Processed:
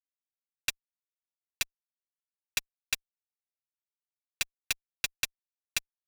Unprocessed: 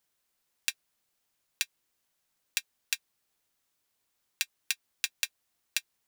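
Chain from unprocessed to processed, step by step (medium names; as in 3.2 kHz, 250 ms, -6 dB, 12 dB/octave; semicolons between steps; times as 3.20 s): fuzz box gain 31 dB, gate -36 dBFS; trim -7 dB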